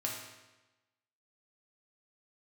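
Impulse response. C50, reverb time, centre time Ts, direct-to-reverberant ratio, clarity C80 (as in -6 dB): 2.5 dB, 1.1 s, 54 ms, -3.0 dB, 5.0 dB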